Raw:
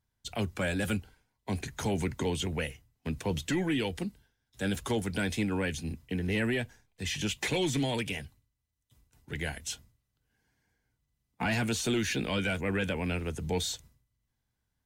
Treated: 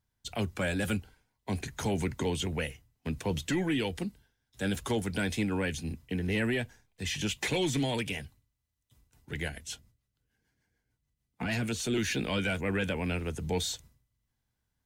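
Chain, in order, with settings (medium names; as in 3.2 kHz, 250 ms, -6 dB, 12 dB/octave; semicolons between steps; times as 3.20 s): 9.48–11.98 s: rotary cabinet horn 6.7 Hz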